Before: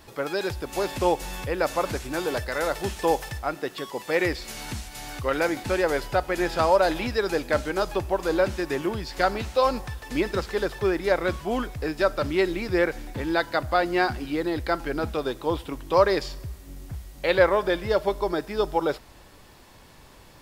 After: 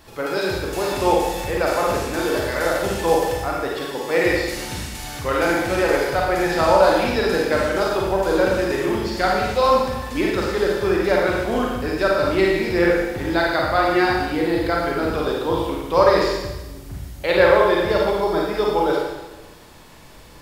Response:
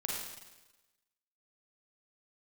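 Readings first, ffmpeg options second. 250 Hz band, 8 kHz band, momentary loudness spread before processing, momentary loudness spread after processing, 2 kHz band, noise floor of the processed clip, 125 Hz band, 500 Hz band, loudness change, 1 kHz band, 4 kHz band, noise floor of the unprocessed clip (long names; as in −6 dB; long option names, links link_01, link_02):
+6.0 dB, +6.0 dB, 10 LU, 9 LU, +6.0 dB, −42 dBFS, +5.0 dB, +6.0 dB, +6.0 dB, +6.0 dB, +6.0 dB, −50 dBFS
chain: -filter_complex "[1:a]atrim=start_sample=2205[link_01];[0:a][link_01]afir=irnorm=-1:irlink=0,volume=3dB"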